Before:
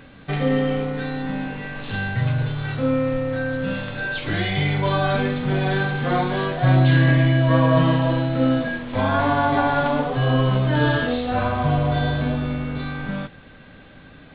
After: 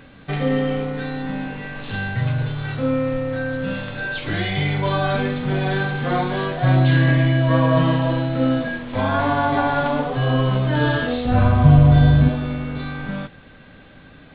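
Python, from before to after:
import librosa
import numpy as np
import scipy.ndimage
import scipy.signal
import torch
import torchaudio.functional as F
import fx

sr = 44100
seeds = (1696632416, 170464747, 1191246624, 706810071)

y = fx.bass_treble(x, sr, bass_db=12, treble_db=-2, at=(11.25, 12.29))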